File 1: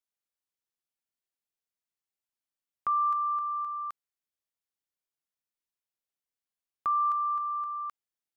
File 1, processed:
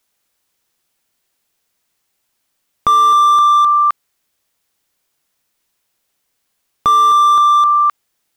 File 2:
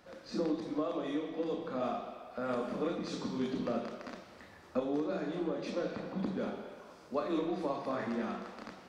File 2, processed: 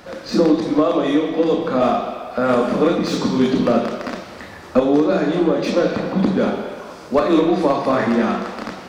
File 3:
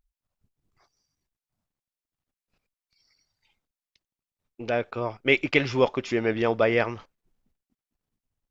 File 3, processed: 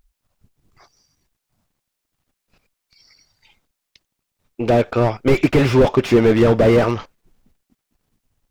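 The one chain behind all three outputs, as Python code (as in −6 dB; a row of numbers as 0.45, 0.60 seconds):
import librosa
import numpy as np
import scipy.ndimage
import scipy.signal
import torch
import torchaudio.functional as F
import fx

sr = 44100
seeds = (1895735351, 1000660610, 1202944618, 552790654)

y = fx.slew_limit(x, sr, full_power_hz=29.0)
y = y * 10.0 ** (-2 / 20.0) / np.max(np.abs(y))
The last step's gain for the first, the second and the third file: +23.5, +18.5, +14.5 decibels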